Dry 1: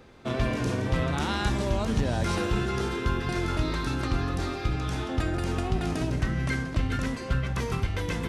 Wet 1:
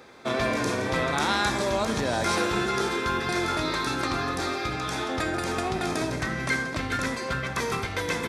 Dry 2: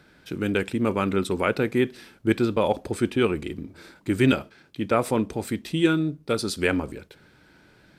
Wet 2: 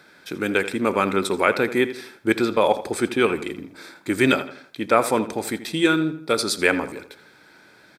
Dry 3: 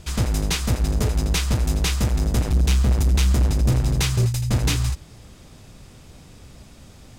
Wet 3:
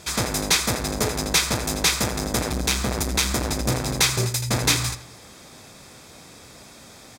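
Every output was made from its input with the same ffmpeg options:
-filter_complex "[0:a]highpass=f=540:p=1,bandreject=f=2.9k:w=6.6,asplit=2[a][b];[b]adelay=82,lowpass=f=4k:p=1,volume=-13dB,asplit=2[c][d];[d]adelay=82,lowpass=f=4k:p=1,volume=0.42,asplit=2[e][f];[f]adelay=82,lowpass=f=4k:p=1,volume=0.42,asplit=2[g][h];[h]adelay=82,lowpass=f=4k:p=1,volume=0.42[i];[a][c][e][g][i]amix=inputs=5:normalize=0,volume=7dB"

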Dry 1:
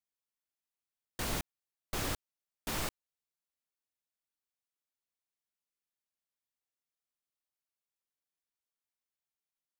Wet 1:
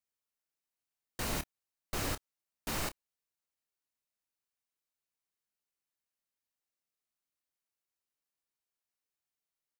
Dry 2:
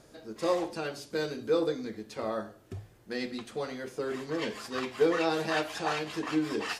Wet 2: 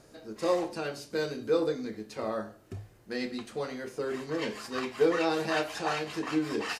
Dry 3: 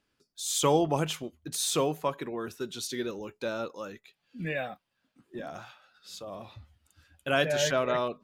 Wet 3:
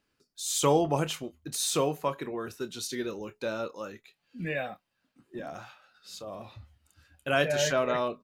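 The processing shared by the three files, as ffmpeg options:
-filter_complex "[0:a]bandreject=f=3.4k:w=16,asplit=2[a][b];[b]adelay=28,volume=-12.5dB[c];[a][c]amix=inputs=2:normalize=0"

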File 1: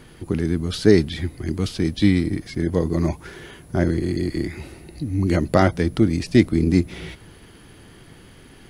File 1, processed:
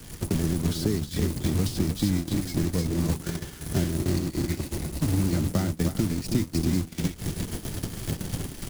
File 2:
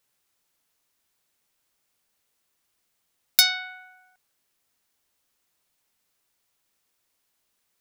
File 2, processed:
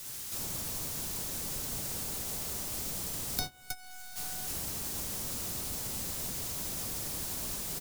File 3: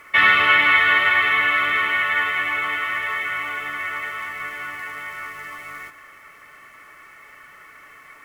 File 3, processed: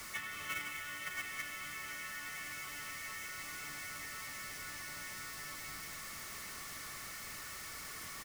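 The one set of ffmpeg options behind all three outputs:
-filter_complex "[0:a]aeval=exprs='val(0)+0.5*0.133*sgn(val(0))':c=same,bandreject=f=60:t=h:w=6,bandreject=f=120:t=h:w=6,acompressor=threshold=-19dB:ratio=2.5,acrusher=bits=4:mode=log:mix=0:aa=0.000001,aecho=1:1:314:0.501,acrusher=bits=5:mix=0:aa=0.000001,bass=f=250:g=10,treble=f=4k:g=10,agate=range=-27dB:threshold=-12dB:ratio=16:detection=peak,acrossover=split=140|410|910[a][b][c][d];[a]acompressor=threshold=-32dB:ratio=4[e];[b]acompressor=threshold=-26dB:ratio=4[f];[c]acompressor=threshold=-42dB:ratio=4[g];[d]acompressor=threshold=-35dB:ratio=4[h];[e][f][g][h]amix=inputs=4:normalize=0,highshelf=f=9.8k:g=-3"

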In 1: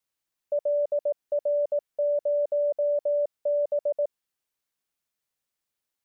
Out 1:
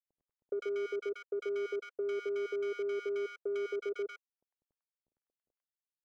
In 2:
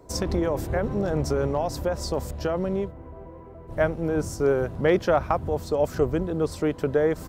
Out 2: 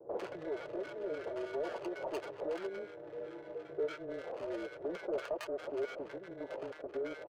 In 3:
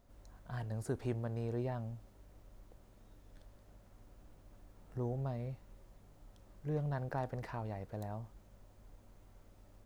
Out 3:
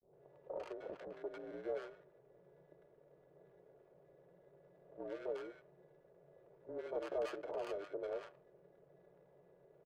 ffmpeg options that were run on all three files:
-filter_complex "[0:a]adynamicequalizer=threshold=0.00251:dfrequency=4700:dqfactor=0.8:tfrequency=4700:tqfactor=0.8:attack=5:release=100:ratio=0.375:range=2.5:mode=boostabove:tftype=bell,aecho=1:1:3.6:0.98,acompressor=threshold=-36dB:ratio=4,afreqshift=-180,acrusher=samples=24:mix=1:aa=0.000001,highpass=f=520:t=q:w=5.9,acrusher=bits=10:mix=0:aa=0.000001,asoftclip=type=tanh:threshold=-27dB,adynamicsmooth=sensitivity=7.5:basefreq=670,acrossover=split=970[a][b];[b]adelay=100[c];[a][c]amix=inputs=2:normalize=0,volume=-1dB"

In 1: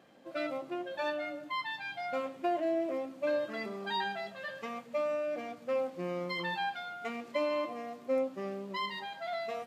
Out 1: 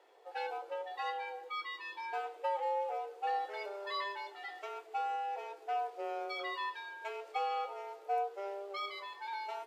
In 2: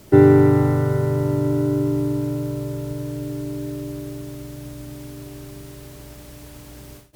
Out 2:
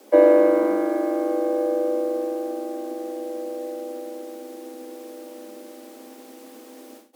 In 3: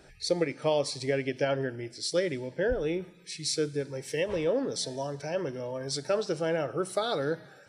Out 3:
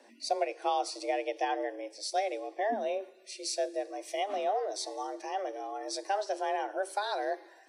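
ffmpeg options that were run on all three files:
-af "afreqshift=200,equalizer=f=510:w=1.5:g=2.5,volume=-4.5dB"

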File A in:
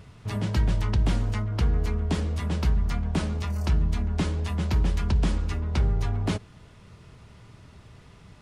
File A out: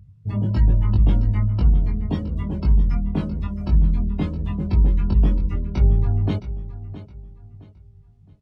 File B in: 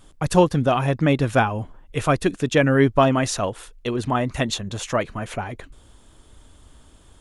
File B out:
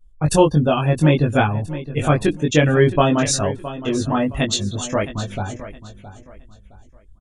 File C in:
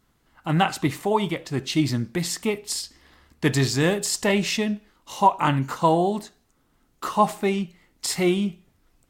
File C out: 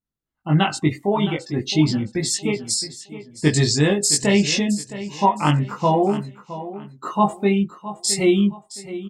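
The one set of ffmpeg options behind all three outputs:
-filter_complex "[0:a]afftdn=nr=28:nf=-34,equalizer=f=1.5k:w=0.37:g=-6.5,asplit=2[a][b];[b]adelay=20,volume=-2dB[c];[a][c]amix=inputs=2:normalize=0,aecho=1:1:666|1332|1998:0.2|0.0619|0.0192,adynamicequalizer=threshold=0.0112:dfrequency=1900:dqfactor=0.7:tfrequency=1900:tqfactor=0.7:attack=5:release=100:ratio=0.375:range=2.5:mode=boostabove:tftype=highshelf,volume=3dB"

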